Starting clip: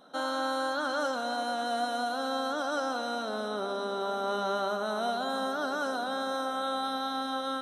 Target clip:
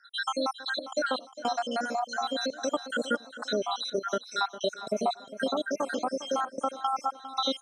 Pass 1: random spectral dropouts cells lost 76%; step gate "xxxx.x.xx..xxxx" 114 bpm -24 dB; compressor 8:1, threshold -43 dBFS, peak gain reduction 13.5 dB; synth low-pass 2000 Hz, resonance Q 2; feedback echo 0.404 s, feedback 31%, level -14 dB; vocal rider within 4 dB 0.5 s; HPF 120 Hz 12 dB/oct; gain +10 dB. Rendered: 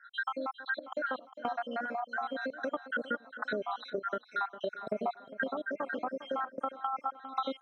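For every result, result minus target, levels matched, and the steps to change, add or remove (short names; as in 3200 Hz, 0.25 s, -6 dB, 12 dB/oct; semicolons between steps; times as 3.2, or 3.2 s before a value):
compressor: peak gain reduction +7.5 dB; 2000 Hz band +4.5 dB
change: compressor 8:1, threshold -34.5 dBFS, peak gain reduction 6 dB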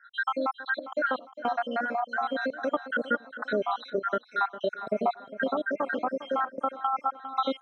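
2000 Hz band +3.5 dB
change: synth low-pass 6300 Hz, resonance Q 2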